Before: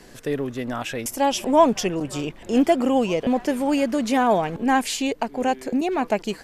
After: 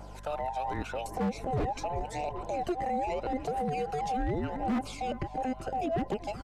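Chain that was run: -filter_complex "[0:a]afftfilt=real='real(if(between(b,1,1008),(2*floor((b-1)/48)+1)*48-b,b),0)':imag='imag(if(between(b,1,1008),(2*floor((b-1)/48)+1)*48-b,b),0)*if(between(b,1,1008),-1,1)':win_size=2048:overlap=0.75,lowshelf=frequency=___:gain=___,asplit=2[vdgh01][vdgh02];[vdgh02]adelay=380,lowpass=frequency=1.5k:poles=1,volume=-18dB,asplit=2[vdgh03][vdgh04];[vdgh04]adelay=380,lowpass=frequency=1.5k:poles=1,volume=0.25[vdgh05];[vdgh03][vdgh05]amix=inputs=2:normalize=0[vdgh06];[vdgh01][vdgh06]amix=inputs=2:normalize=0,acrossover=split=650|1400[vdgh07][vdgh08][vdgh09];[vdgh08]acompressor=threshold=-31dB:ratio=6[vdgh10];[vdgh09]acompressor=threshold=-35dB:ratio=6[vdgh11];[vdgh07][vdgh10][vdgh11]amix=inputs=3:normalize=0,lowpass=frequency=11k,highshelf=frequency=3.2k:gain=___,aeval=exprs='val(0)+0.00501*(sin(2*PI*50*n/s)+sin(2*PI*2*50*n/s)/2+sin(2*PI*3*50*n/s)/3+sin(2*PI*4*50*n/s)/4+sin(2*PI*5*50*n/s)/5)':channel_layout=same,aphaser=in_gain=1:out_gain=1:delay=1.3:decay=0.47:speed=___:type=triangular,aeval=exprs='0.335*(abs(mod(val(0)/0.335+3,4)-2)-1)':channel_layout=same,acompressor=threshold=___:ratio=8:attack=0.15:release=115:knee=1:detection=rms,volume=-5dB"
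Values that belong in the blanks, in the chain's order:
480, 4, -6.5, 0.83, -20dB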